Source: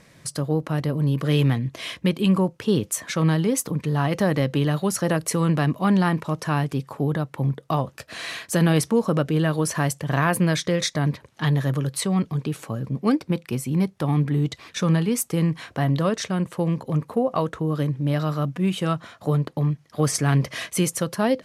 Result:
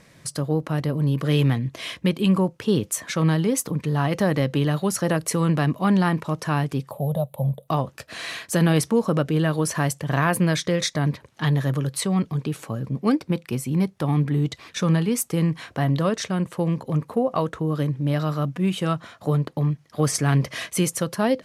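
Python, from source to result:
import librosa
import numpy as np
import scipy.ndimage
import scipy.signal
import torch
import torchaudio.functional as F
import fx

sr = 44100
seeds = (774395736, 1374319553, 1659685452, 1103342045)

y = fx.curve_eq(x, sr, hz=(190.0, 340.0, 580.0, 1000.0, 1600.0, 3700.0, 5500.0, 12000.0), db=(0, -21, 10, -7, -24, -2, -18, 14), at=(6.91, 7.68))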